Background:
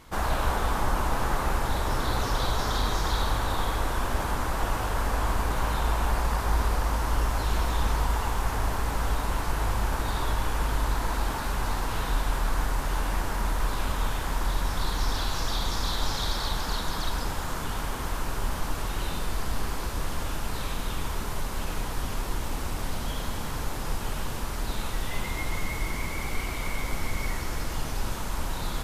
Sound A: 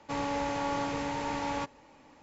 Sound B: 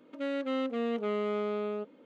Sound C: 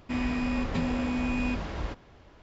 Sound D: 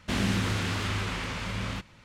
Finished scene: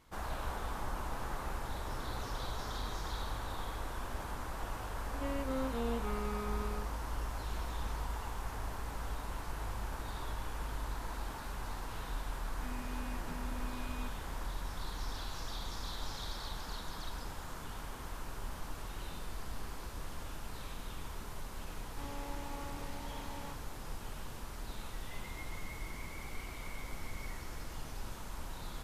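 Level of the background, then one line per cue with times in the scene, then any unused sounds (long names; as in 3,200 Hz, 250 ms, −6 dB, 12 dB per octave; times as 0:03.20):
background −13 dB
0:05.01: mix in B −10 dB + comb filter 4 ms, depth 80%
0:12.53: mix in C −17.5 dB
0:21.88: mix in A −15 dB
not used: D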